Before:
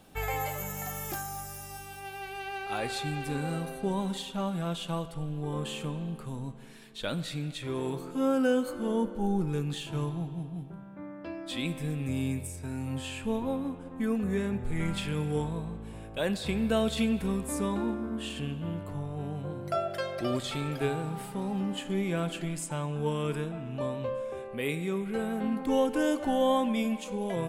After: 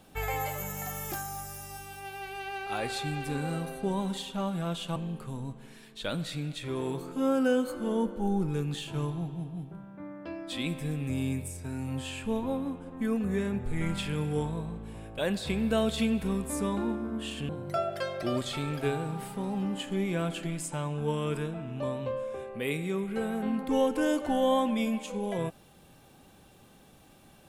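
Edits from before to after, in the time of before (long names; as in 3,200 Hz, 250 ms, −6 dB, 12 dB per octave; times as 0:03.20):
0:04.96–0:05.95: remove
0:18.48–0:19.47: remove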